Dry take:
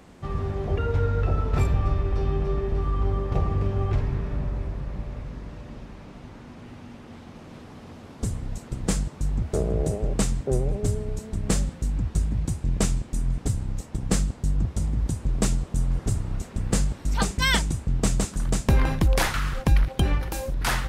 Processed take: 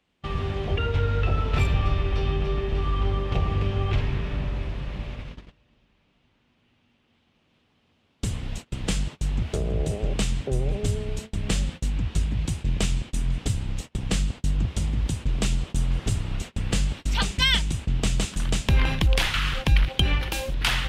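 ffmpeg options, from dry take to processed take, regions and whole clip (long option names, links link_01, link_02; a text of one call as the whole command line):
ffmpeg -i in.wav -filter_complex "[0:a]asettb=1/sr,asplit=3[link_01][link_02][link_03];[link_01]atrim=end=11.894[link_04];[link_02]atrim=start=11.89:end=12.39,asetpts=PTS-STARTPTS,afade=type=in:duration=0.004:curve=qsin,afade=type=out:start_time=0.496:duration=0.004:curve=qsin,lowpass=frequency=3000:poles=1,aemphasis=mode=production:type=cd[link_05];[link_03]atrim=start=12.386[link_06];[link_04][link_05]acrossfade=duration=0.004:curve1=hsin:curve2=qsin[link_07];[link_07][link_06]acrossfade=duration=0.004:curve1=qsin:curve2=hsin,acrossover=split=170[link_08][link_09];[link_09]acompressor=threshold=-28dB:ratio=6[link_10];[link_08][link_10]amix=inputs=2:normalize=0,equalizer=frequency=3000:width_type=o:width=1.2:gain=14.5,agate=range=-25dB:threshold=-33dB:ratio=16:detection=peak" out.wav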